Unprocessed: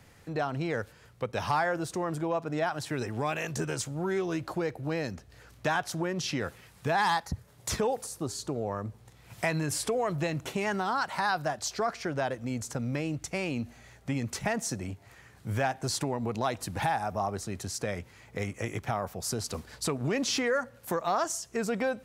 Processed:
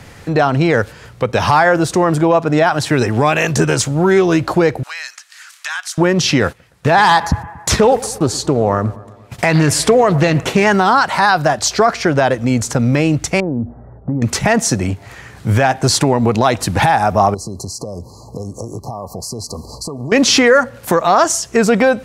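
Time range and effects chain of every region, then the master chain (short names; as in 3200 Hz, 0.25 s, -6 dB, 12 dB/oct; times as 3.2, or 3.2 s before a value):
4.83–5.98 HPF 1300 Hz 24 dB/oct + bell 8000 Hz +7 dB 1.1 oct + compressor 2:1, threshold -45 dBFS
6.48–10.67 gate -50 dBFS, range -17 dB + analogue delay 0.117 s, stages 2048, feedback 61%, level -19.5 dB + Doppler distortion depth 0.27 ms
13.4–14.22 Gaussian blur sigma 9.3 samples + compressor 3:1, threshold -34 dBFS
17.34–20.12 compressor 5:1, threshold -41 dBFS + brick-wall FIR band-stop 1200–4000 Hz
whole clip: high shelf 12000 Hz -10 dB; maximiser +19.5 dB; gain -1 dB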